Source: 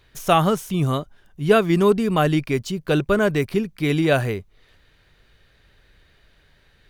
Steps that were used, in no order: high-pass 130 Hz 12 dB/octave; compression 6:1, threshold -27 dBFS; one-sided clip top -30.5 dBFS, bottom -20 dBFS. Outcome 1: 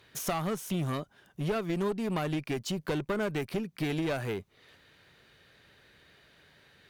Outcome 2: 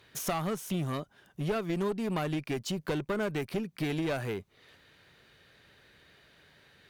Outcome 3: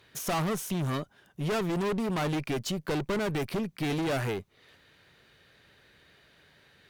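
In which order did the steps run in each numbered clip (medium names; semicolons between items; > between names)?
high-pass > compression > one-sided clip; compression > high-pass > one-sided clip; high-pass > one-sided clip > compression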